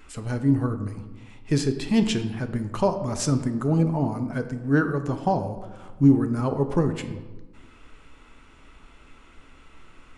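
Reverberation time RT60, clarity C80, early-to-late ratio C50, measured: 1.2 s, 12.0 dB, 10.5 dB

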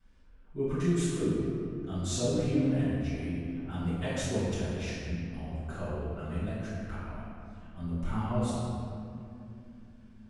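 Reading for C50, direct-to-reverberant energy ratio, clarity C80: −3.0 dB, −14.0 dB, −1.0 dB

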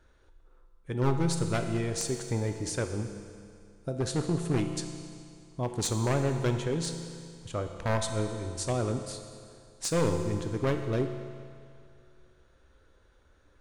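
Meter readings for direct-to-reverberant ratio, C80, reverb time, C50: 5.5 dB, 7.5 dB, 2.3 s, 7.0 dB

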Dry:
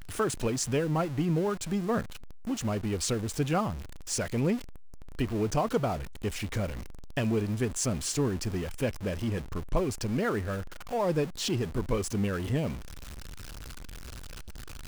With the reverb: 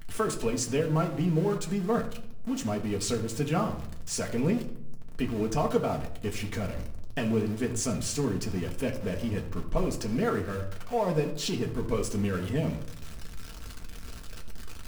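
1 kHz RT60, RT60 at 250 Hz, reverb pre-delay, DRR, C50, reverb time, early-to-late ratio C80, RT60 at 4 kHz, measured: 0.60 s, 1.1 s, 4 ms, 1.0 dB, 11.0 dB, 0.70 s, 13.5 dB, 0.45 s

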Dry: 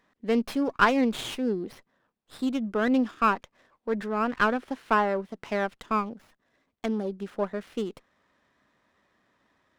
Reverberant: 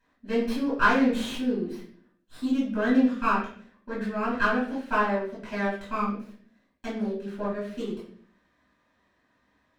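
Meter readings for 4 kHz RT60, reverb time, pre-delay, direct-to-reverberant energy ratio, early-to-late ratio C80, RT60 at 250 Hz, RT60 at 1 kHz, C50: 0.50 s, 0.50 s, 3 ms, −8.5 dB, 8.5 dB, 0.85 s, 0.45 s, 4.0 dB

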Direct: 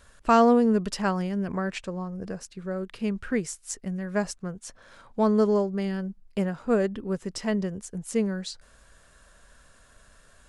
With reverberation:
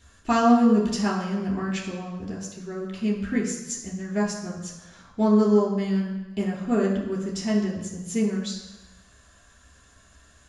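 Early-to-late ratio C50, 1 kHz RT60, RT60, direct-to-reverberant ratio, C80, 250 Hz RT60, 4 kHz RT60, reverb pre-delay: 4.5 dB, 1.1 s, 1.0 s, −4.0 dB, 6.5 dB, 1.0 s, 1.1 s, 3 ms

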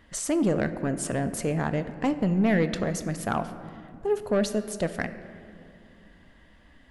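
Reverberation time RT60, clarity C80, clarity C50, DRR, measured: 2.5 s, 12.5 dB, 11.5 dB, 10.0 dB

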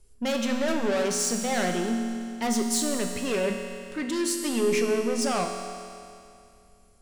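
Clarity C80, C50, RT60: 5.5 dB, 4.5 dB, 2.5 s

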